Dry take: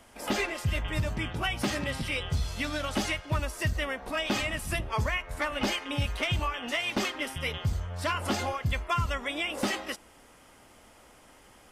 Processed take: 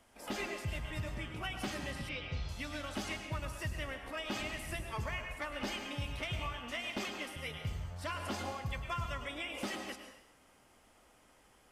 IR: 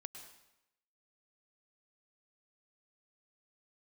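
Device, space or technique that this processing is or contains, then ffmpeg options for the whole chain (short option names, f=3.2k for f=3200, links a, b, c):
bathroom: -filter_complex "[1:a]atrim=start_sample=2205[a];[0:a][a]afir=irnorm=-1:irlink=0,asettb=1/sr,asplit=3[b][c][d];[b]atrim=end=2.094[e];[c]atrim=start=2.09:end=2.49,asetpts=PTS-STARTPTS,afade=t=in:d=0.004:c=qsin,afade=t=out:st=0.396:d=0.004:c=qsin,lowpass=f=5.4k:w=0.5412,lowpass=f=5.4k:w=1.3066[f];[d]atrim=start=2.486[g];[e][f]acrossfade=d=0.004:c1=hsin:c2=qsin[h];[h][g]acrossfade=d=0.004:c1=qsin:c2=hsin,volume=-4.5dB"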